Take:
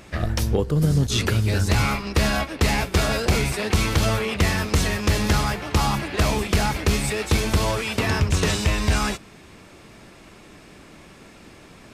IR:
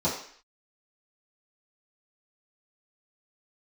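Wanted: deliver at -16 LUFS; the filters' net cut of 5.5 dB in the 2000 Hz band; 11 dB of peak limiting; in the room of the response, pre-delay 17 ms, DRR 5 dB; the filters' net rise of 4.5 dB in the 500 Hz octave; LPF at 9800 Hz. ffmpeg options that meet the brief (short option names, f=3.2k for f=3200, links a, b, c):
-filter_complex "[0:a]lowpass=9.8k,equalizer=f=500:t=o:g=6,equalizer=f=2k:t=o:g=-7.5,alimiter=limit=-18dB:level=0:latency=1,asplit=2[a][b];[1:a]atrim=start_sample=2205,adelay=17[c];[b][c]afir=irnorm=-1:irlink=0,volume=-16dB[d];[a][d]amix=inputs=2:normalize=0,volume=8.5dB"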